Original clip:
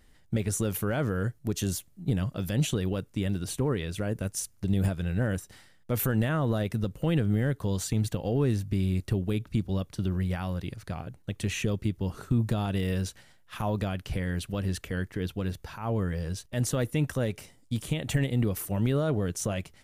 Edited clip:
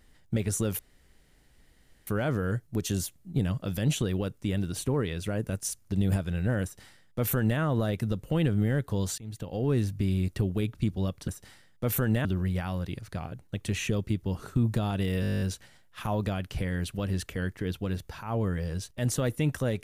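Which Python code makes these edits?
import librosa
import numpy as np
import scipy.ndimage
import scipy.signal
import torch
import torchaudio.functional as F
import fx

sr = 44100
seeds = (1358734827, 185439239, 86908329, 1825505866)

y = fx.edit(x, sr, fx.insert_room_tone(at_s=0.79, length_s=1.28),
    fx.duplicate(start_s=5.35, length_s=0.97, to_s=10.0),
    fx.fade_in_from(start_s=7.9, length_s=0.57, floor_db=-23.5),
    fx.stutter(start_s=12.96, slice_s=0.02, count=11), tone=tone)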